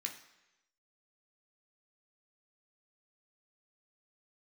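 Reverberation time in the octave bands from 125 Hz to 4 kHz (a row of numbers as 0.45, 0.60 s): 0.90, 0.85, 1.0, 1.0, 1.0, 0.95 s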